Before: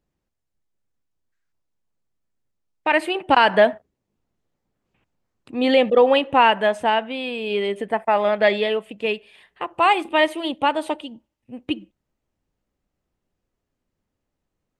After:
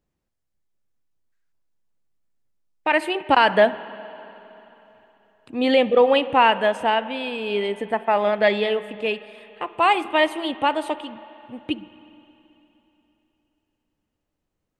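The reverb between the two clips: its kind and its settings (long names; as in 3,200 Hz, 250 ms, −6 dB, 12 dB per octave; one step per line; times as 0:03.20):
spring reverb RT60 3.4 s, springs 44/53/58 ms, chirp 30 ms, DRR 15.5 dB
level −1 dB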